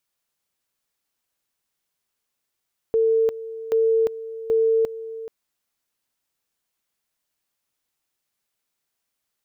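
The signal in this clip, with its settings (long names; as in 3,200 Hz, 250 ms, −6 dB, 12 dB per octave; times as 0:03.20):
tone at two levels in turn 449 Hz −15.5 dBFS, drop 15 dB, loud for 0.35 s, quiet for 0.43 s, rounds 3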